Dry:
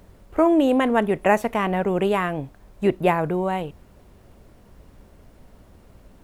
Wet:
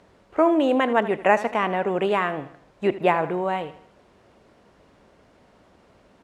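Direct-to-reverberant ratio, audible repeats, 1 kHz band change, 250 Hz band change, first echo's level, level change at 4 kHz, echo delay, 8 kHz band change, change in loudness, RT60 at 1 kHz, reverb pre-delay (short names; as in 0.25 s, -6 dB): none, 3, +1.0 dB, -3.5 dB, -15.0 dB, +0.5 dB, 79 ms, n/a, -1.0 dB, none, none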